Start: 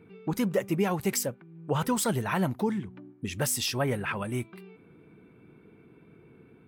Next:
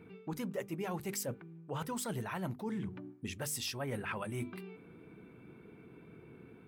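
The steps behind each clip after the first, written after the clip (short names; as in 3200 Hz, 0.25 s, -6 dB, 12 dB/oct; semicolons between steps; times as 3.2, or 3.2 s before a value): notches 50/100/150/200/250/300/350/400/450 Hz; reverse; compressor 6:1, threshold -37 dBFS, peak gain reduction 15 dB; reverse; gain +1 dB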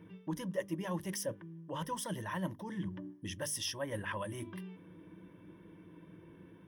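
ripple EQ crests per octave 1.2, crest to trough 13 dB; gain -2 dB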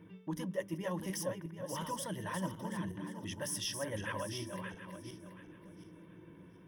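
regenerating reverse delay 0.365 s, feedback 48%, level -6 dB; gain -1 dB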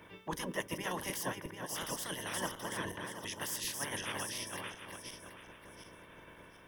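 spectral limiter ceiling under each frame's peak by 23 dB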